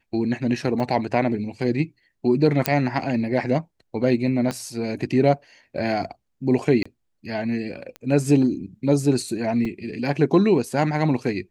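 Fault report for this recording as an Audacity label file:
0.800000	0.800000	gap 2.2 ms
2.660000	2.660000	pop -2 dBFS
4.510000	4.510000	pop -13 dBFS
6.830000	6.860000	gap 25 ms
7.960000	7.960000	pop -21 dBFS
9.650000	9.650000	gap 3 ms

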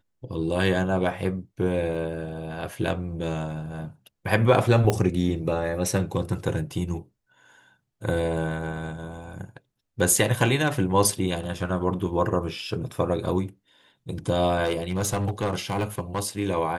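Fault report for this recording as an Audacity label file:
1.950000	1.950000	gap 2.6 ms
4.900000	4.900000	pop -8 dBFS
14.640000	16.210000	clipped -20 dBFS

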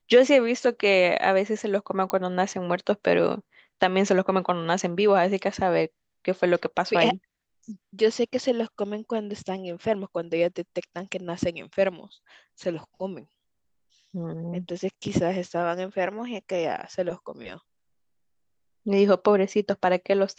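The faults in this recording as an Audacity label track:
2.100000	2.100000	pop -13 dBFS

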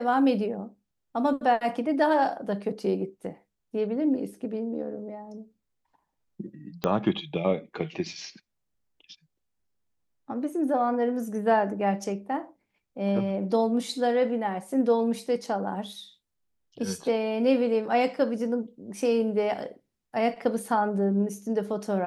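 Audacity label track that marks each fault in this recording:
6.840000	6.840000	pop -12 dBFS

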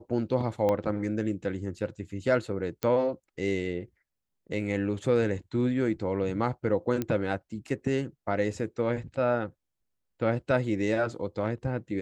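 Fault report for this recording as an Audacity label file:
0.690000	0.690000	pop -16 dBFS
2.830000	2.830000	pop -15 dBFS
7.020000	7.020000	pop -16 dBFS

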